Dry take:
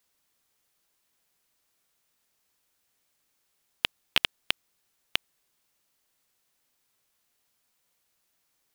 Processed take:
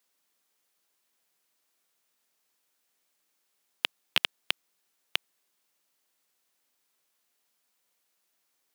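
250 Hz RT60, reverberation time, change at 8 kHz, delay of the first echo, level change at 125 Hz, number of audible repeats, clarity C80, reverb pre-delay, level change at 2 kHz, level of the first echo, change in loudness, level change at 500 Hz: none, none, -1.5 dB, none, n/a, none, none, none, -1.5 dB, none, -1.5 dB, -1.5 dB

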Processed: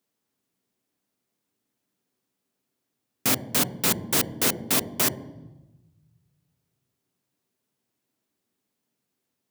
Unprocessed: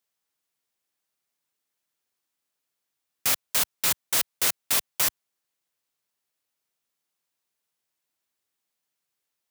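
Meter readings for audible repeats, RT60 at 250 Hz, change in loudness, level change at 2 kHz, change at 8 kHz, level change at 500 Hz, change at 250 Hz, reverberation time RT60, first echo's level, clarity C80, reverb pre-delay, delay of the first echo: none, 1.6 s, +0.5 dB, +1.0 dB, 0.0 dB, +9.0 dB, +16.0 dB, 1.1 s, none, 17.0 dB, 3 ms, none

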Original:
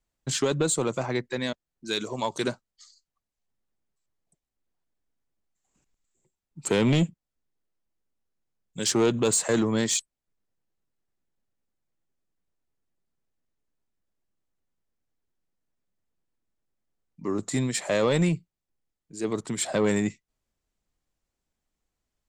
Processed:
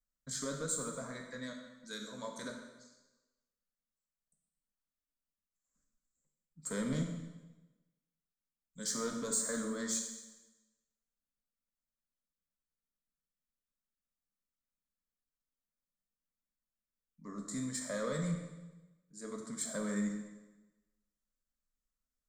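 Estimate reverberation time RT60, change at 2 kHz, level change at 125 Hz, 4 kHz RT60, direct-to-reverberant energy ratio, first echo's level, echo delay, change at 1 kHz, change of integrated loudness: 1.1 s, -12.5 dB, -13.5 dB, 1.0 s, 1.5 dB, none, none, -13.0 dB, -12.0 dB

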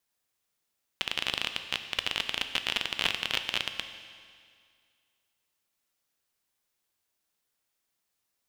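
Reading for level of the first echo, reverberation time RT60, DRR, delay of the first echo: none, 2.1 s, 8.0 dB, none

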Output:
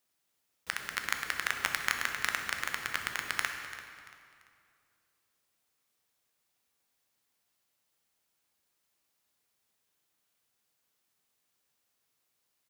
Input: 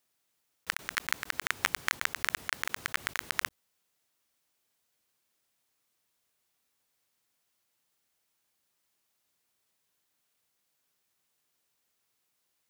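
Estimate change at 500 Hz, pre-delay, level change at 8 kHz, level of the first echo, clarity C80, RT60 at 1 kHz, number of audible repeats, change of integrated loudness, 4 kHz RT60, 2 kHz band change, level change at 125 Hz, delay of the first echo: -0.5 dB, 9 ms, -1.0 dB, -15.0 dB, 6.0 dB, 2.3 s, 3, -1.0 dB, 2.0 s, -0.5 dB, -0.5 dB, 0.34 s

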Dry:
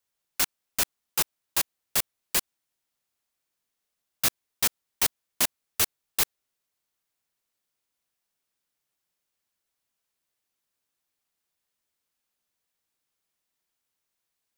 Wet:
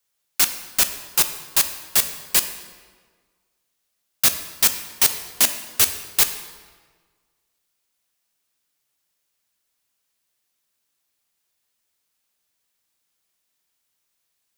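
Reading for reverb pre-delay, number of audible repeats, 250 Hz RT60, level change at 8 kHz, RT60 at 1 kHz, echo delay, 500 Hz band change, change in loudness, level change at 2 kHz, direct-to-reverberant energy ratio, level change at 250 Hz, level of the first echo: 9 ms, none, 1.6 s, +8.0 dB, 1.5 s, none, +4.0 dB, +8.0 dB, +6.0 dB, 8.0 dB, +4.0 dB, none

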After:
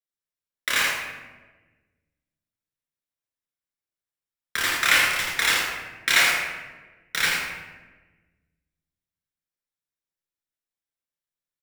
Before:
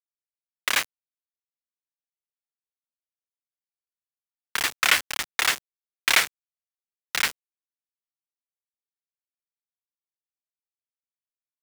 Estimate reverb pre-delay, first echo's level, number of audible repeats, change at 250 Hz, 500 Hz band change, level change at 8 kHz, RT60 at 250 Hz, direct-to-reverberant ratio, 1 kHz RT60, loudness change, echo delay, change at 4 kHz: 12 ms, -4.5 dB, 1, +4.5 dB, +3.5 dB, +1.0 dB, 1.7 s, -4.5 dB, 1.1 s, +2.0 dB, 81 ms, +1.5 dB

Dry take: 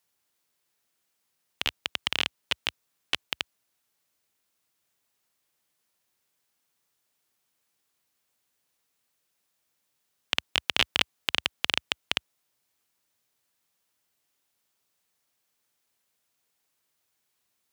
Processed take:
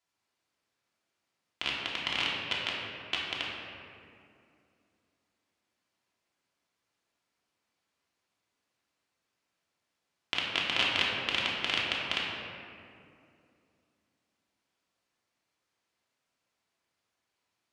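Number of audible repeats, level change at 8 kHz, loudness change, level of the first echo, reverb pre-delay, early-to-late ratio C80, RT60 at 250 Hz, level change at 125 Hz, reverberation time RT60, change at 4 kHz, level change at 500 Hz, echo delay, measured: none, -7.5 dB, -2.0 dB, none, 3 ms, 1.0 dB, 3.2 s, +0.5 dB, 2.5 s, -2.5 dB, +1.0 dB, none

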